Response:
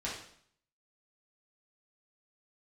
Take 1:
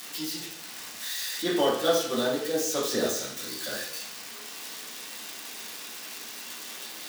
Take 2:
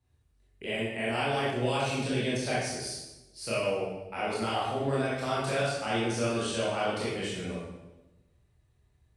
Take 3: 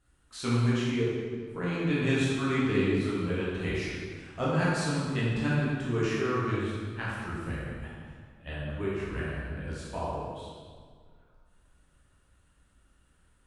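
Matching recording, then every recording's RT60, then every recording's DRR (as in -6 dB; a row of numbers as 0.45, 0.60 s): 1; 0.60, 1.0, 1.9 s; -7.0, -8.5, -8.5 dB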